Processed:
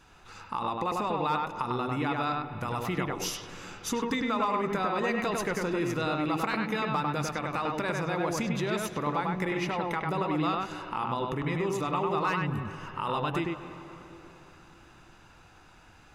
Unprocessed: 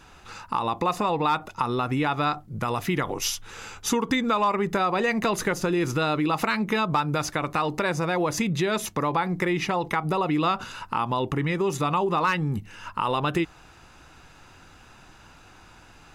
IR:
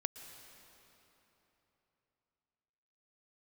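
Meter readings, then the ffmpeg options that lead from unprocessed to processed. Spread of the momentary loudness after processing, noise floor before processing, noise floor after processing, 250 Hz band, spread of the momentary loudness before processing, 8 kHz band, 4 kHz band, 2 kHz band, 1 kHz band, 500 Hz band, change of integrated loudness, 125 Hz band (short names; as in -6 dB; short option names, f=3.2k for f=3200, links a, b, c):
7 LU, -51 dBFS, -55 dBFS, -4.5 dB, 6 LU, -7.0 dB, -6.0 dB, -5.0 dB, -4.5 dB, -4.5 dB, -5.0 dB, -5.0 dB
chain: -filter_complex "[0:a]asplit=2[a][b];[1:a]atrim=start_sample=2205,lowpass=3.2k,adelay=99[c];[b][c]afir=irnorm=-1:irlink=0,volume=-1dB[d];[a][d]amix=inputs=2:normalize=0,volume=-7dB"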